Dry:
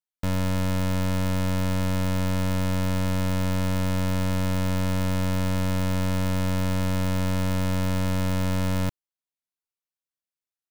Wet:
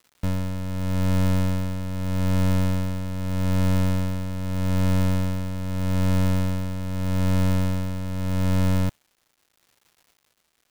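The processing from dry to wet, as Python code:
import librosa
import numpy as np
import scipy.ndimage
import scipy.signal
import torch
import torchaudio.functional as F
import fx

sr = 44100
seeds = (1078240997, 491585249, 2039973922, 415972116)

y = fx.low_shelf(x, sr, hz=370.0, db=5.5)
y = fx.dmg_crackle(y, sr, seeds[0], per_s=340.0, level_db=-41.0)
y = y * (1.0 - 0.51 / 2.0 + 0.51 / 2.0 * np.cos(2.0 * np.pi * 0.81 * (np.arange(len(y)) / sr)))
y = fx.upward_expand(y, sr, threshold_db=-29.0, expansion=1.5)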